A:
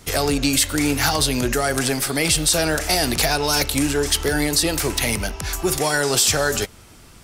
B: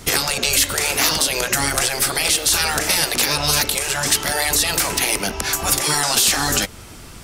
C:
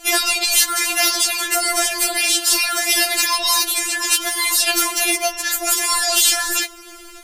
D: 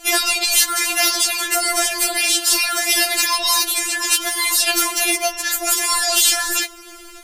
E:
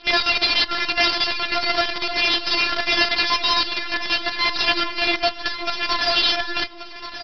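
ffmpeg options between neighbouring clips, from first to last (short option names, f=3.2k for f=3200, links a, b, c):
-af "afftfilt=real='re*lt(hypot(re,im),0.251)':imag='im*lt(hypot(re,im),0.251)':win_size=1024:overlap=0.75,alimiter=limit=-12dB:level=0:latency=1:release=238,volume=7.5dB"
-af "lowshelf=f=260:g=-5.5,afftfilt=real='re*4*eq(mod(b,16),0)':imag='im*4*eq(mod(b,16),0)':win_size=2048:overlap=0.75,volume=3.5dB"
-af anull
-af "aresample=11025,acrusher=bits=4:dc=4:mix=0:aa=0.000001,aresample=44100,aecho=1:1:1132:0.237"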